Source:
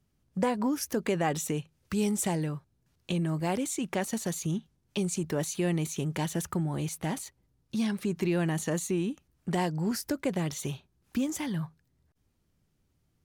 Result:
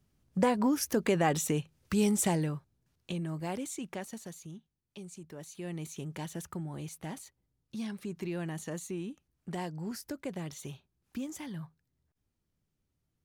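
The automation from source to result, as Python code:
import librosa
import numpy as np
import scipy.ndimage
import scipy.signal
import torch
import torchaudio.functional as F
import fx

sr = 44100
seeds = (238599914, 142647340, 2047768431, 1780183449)

y = fx.gain(x, sr, db=fx.line((2.28, 1.0), (3.2, -6.5), (3.75, -6.5), (4.57, -16.0), (5.36, -16.0), (5.87, -8.5)))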